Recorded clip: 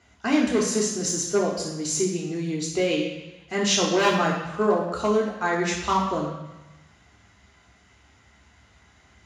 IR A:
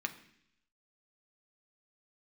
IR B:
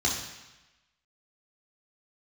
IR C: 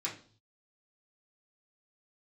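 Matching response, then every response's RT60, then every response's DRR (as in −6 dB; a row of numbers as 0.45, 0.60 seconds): B; 0.70, 1.0, 0.45 seconds; 5.5, −4.0, −7.0 decibels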